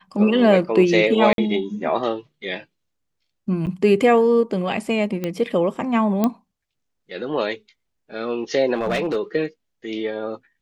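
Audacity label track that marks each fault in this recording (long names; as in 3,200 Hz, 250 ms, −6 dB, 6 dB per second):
1.330000	1.380000	drop-out 52 ms
3.660000	3.670000	drop-out 8.9 ms
5.240000	5.240000	click −12 dBFS
6.240000	6.240000	click −7 dBFS
8.740000	9.170000	clipping −17.5 dBFS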